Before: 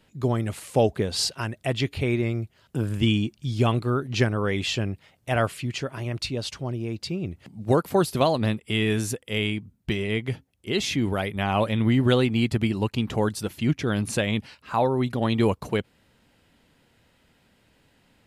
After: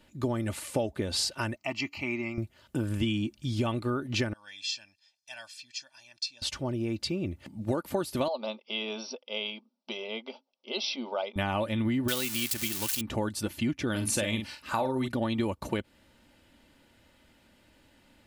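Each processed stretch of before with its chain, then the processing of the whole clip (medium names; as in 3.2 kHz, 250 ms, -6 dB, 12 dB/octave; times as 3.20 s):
1.56–2.38 s: Bessel high-pass 310 Hz + peaking EQ 9.6 kHz -8 dB 0.7 oct + static phaser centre 2.4 kHz, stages 8
4.33–6.42 s: band-pass filter 5.1 kHz, Q 3.6 + comb 1.2 ms, depth 86%
8.28–11.36 s: brick-wall FIR band-pass 220–5900 Hz + static phaser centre 740 Hz, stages 4
12.08–13.01 s: zero-crossing glitches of -16 dBFS + tilt shelf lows -6.5 dB, about 1.1 kHz
13.90–15.08 s: treble shelf 4.6 kHz +9 dB + doubling 46 ms -7.5 dB
whole clip: comb 3.4 ms, depth 47%; compression, threshold -26 dBFS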